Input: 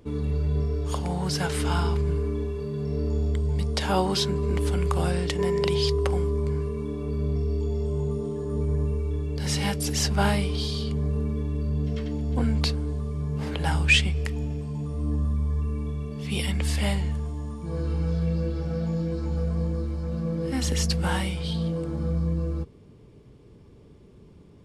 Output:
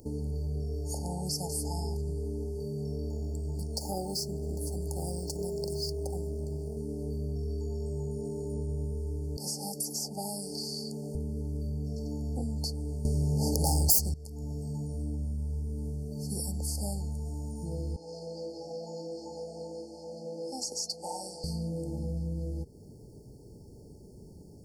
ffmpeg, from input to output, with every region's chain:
ffmpeg -i in.wav -filter_complex "[0:a]asettb=1/sr,asplit=3[link_01][link_02][link_03];[link_01]atrim=end=3.104[link_04];[link_02]atrim=start=3.1:end=6.77,asetpts=PTS-STARTPTS,afade=type=in:duration=0.004:curve=qsin,afade=type=out:start_time=3.666:duration=0.004:curve=qsin,tremolo=f=230:d=0.4,aeval=exprs='sgn(val(0))*max(abs(val(0))-0.00398,0)':channel_layout=same[link_05];[link_03]atrim=start=6.766[link_06];[link_04][link_05]acrossfade=duration=0.004:curve1=hsin:curve2=qsin[link_07];[link_07][link_06]acrossfade=duration=0.004:curve1=qsin:curve2=hsin,asettb=1/sr,asplit=3[link_08][link_09][link_10];[link_08]atrim=end=9.374[link_11];[link_09]atrim=start=9.37:end=11.15,asetpts=PTS-STARTPTS,afade=type=in:duration=0.004:curve=qsin,afade=type=out:start_time=1.776:duration=0.004:curve=qsin,highpass=frequency=170:width=0.5412,highpass=frequency=170:width=1.3066,acrossover=split=280|620|1900[link_12][link_13][link_14][link_15];[link_12]acompressor=threshold=-38dB:ratio=3[link_16];[link_13]acompressor=threshold=-44dB:ratio=3[link_17];[link_14]acompressor=threshold=-37dB:ratio=3[link_18];[link_15]acompressor=threshold=-36dB:ratio=3[link_19];[link_16][link_17][link_18][link_19]amix=inputs=4:normalize=0[link_20];[link_10]atrim=start=11.146[link_21];[link_11][link_20]acrossfade=duration=0.004:curve1=hsin:curve2=qsin[link_22];[link_22][link_21]acrossfade=duration=0.004:curve1=qsin:curve2=hsin,asettb=1/sr,asplit=3[link_23][link_24][link_25];[link_23]atrim=end=13.054[link_26];[link_24]atrim=start=13.05:end=14.14,asetpts=PTS-STARTPTS,afade=type=in:duration=0.004:curve=qsin,afade=type=out:start_time=1.086:duration=0.004:curve=qsin,lowpass=frequency=4000:poles=1,highshelf=frequency=3100:gain=11.5,aeval=exprs='0.631*sin(PI/2*5.62*val(0)/0.631)':channel_layout=same[link_27];[link_25]atrim=start=14.136[link_28];[link_26][link_27]acrossfade=duration=0.004:curve1=hsin:curve2=qsin[link_29];[link_29][link_28]acrossfade=duration=0.004:curve1=qsin:curve2=hsin,asettb=1/sr,asplit=3[link_30][link_31][link_32];[link_30]atrim=end=17.964[link_33];[link_31]atrim=start=17.96:end=21.44,asetpts=PTS-STARTPTS,afade=type=in:duration=0.004:curve=qsin,afade=type=out:start_time=3.476:duration=0.004:curve=qsin,aeval=exprs='0.168*(abs(mod(val(0)/0.168+3,4)-2)-1)':channel_layout=same,highpass=560,lowpass=5800[link_34];[link_32]atrim=start=21.436[link_35];[link_33][link_34]acrossfade=duration=0.004:curve1=hsin:curve2=qsin[link_36];[link_36][link_35]acrossfade=duration=0.004:curve1=qsin:curve2=hsin,aemphasis=mode=production:type=50fm,afftfilt=real='re*(1-between(b*sr/4096,910,4300))':imag='im*(1-between(b*sr/4096,910,4300))':win_size=4096:overlap=0.75,acompressor=threshold=-36dB:ratio=2.5,volume=1dB" out.wav

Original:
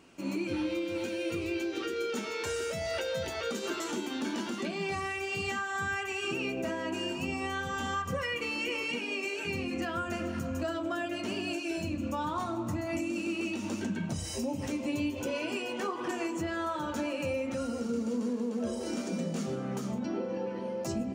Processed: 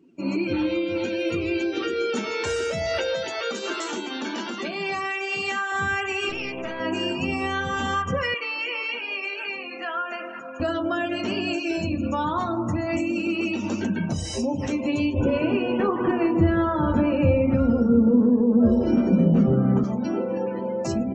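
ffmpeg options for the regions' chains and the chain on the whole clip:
ffmpeg -i in.wav -filter_complex "[0:a]asettb=1/sr,asplit=3[link_01][link_02][link_03];[link_01]atrim=end=3.154[link_04];[link_02]atrim=start=3.15:end=5.72,asetpts=PTS-STARTPTS,afade=type=in:duration=0.004:curve=qsin,afade=type=out:start_time=2.566:duration=0.004:curve=qsin,highpass=120,lowshelf=frequency=280:gain=-11[link_05];[link_03]atrim=start=5.716[link_06];[link_04][link_05]acrossfade=duration=0.004:curve1=hsin:curve2=qsin[link_07];[link_07][link_06]acrossfade=duration=0.004:curve1=qsin:curve2=hsin,asettb=1/sr,asplit=3[link_08][link_09][link_10];[link_08]atrim=end=6.294[link_11];[link_09]atrim=start=6.29:end=6.8,asetpts=PTS-STARTPTS,afade=type=in:duration=0.004:curve=qsin,afade=type=out:start_time=0.506:duration=0.004:curve=qsin,lowshelf=frequency=340:gain=-9,aeval=exprs='clip(val(0),-1,0.00708)':channel_layout=same[link_12];[link_10]atrim=start=6.796[link_13];[link_11][link_12]acrossfade=duration=0.004:curve1=hsin:curve2=qsin[link_14];[link_14][link_13]acrossfade=duration=0.004:curve1=qsin:curve2=hsin,asettb=1/sr,asplit=3[link_15][link_16][link_17];[link_15]atrim=end=8.344[link_18];[link_16]atrim=start=8.34:end=10.6,asetpts=PTS-STARTPTS,afade=type=in:duration=0.004:curve=qsin,afade=type=out:start_time=2.256:duration=0.004:curve=qsin,highpass=720,aemphasis=mode=reproduction:type=50fm[link_19];[link_17]atrim=start=10.596[link_20];[link_18][link_19]acrossfade=duration=0.004:curve1=hsin:curve2=qsin[link_21];[link_21][link_20]acrossfade=duration=0.004:curve1=qsin:curve2=hsin,asettb=1/sr,asplit=3[link_22][link_23][link_24];[link_22]atrim=end=15.144[link_25];[link_23]atrim=start=15.14:end=19.84,asetpts=PTS-STARTPTS,afade=type=in:duration=0.004:curve=qsin,afade=type=out:start_time=4.696:duration=0.004:curve=qsin,aemphasis=mode=reproduction:type=riaa,aecho=1:1:165:0.266,atrim=end_sample=207270[link_26];[link_24]atrim=start=19.836[link_27];[link_25][link_26]acrossfade=duration=0.004:curve1=hsin:curve2=qsin[link_28];[link_28][link_27]acrossfade=duration=0.004:curve1=qsin:curve2=hsin,lowpass=7600,afftdn=noise_reduction=24:noise_floor=-50,volume=8dB" out.wav

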